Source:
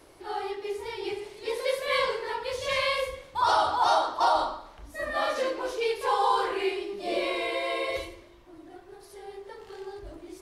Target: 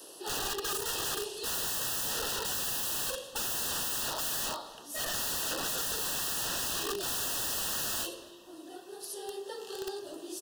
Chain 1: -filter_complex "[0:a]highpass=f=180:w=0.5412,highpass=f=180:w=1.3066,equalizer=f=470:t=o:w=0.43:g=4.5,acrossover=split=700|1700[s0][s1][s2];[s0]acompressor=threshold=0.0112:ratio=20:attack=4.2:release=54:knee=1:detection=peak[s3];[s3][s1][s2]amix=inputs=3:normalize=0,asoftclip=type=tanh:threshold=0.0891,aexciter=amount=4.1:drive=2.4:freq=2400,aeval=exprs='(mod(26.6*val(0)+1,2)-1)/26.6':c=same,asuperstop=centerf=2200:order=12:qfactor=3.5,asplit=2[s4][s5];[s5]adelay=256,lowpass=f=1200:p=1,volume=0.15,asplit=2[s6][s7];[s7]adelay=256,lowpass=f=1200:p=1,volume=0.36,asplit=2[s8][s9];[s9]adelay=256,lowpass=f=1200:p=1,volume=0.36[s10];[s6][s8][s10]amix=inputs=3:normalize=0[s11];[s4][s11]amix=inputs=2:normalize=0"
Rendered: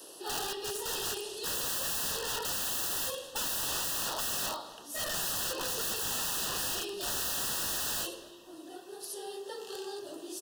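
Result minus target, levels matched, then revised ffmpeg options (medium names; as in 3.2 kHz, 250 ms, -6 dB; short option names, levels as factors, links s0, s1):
compression: peak gain reduction +10 dB; saturation: distortion +11 dB
-filter_complex "[0:a]highpass=f=180:w=0.5412,highpass=f=180:w=1.3066,equalizer=f=470:t=o:w=0.43:g=4.5,acrossover=split=700|1700[s0][s1][s2];[s0]acompressor=threshold=0.0376:ratio=20:attack=4.2:release=54:knee=1:detection=peak[s3];[s3][s1][s2]amix=inputs=3:normalize=0,asoftclip=type=tanh:threshold=0.237,aexciter=amount=4.1:drive=2.4:freq=2400,aeval=exprs='(mod(26.6*val(0)+1,2)-1)/26.6':c=same,asuperstop=centerf=2200:order=12:qfactor=3.5,asplit=2[s4][s5];[s5]adelay=256,lowpass=f=1200:p=1,volume=0.15,asplit=2[s6][s7];[s7]adelay=256,lowpass=f=1200:p=1,volume=0.36,asplit=2[s8][s9];[s9]adelay=256,lowpass=f=1200:p=1,volume=0.36[s10];[s6][s8][s10]amix=inputs=3:normalize=0[s11];[s4][s11]amix=inputs=2:normalize=0"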